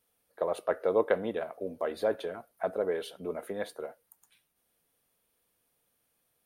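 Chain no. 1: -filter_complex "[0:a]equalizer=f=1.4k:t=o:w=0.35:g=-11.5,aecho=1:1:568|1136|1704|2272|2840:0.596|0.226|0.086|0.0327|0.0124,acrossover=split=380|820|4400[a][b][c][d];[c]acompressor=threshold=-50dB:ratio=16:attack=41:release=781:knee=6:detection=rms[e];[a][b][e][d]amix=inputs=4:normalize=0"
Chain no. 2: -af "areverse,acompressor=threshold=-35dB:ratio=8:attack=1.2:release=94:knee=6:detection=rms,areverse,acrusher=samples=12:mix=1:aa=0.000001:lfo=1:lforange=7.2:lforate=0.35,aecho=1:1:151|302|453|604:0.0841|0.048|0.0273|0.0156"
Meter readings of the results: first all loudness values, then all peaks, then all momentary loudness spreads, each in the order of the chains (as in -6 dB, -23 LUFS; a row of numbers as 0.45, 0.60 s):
-33.0, -43.0 LUFS; -15.0, -30.5 dBFS; 17, 5 LU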